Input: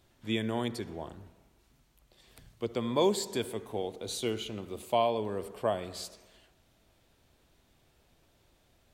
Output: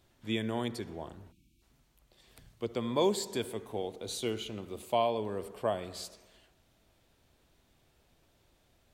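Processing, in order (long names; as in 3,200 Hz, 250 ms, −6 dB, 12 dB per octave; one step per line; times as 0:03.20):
time-frequency box erased 0:01.32–0:01.62, 350–2,200 Hz
level −1.5 dB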